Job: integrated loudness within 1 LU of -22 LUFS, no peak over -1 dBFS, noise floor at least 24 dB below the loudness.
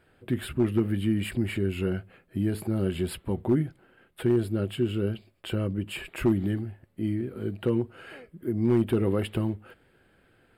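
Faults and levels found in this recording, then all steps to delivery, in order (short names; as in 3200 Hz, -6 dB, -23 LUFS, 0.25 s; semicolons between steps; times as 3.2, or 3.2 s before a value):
clipped 0.4%; flat tops at -15.5 dBFS; loudness -28.5 LUFS; peak -15.5 dBFS; loudness target -22.0 LUFS
-> clip repair -15.5 dBFS; gain +6.5 dB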